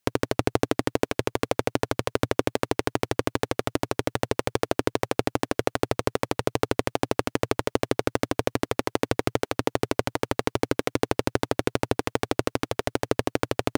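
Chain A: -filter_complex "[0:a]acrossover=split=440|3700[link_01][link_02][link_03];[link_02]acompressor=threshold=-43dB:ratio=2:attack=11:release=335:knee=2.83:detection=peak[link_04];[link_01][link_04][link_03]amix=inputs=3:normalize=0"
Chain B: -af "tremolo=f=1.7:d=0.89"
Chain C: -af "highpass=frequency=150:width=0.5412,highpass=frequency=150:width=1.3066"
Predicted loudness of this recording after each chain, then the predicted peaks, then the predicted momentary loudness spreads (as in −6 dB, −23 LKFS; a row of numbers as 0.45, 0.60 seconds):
−30.5, −31.5, −28.0 LKFS; −8.5, −4.0, −4.0 dBFS; 2, 6, 2 LU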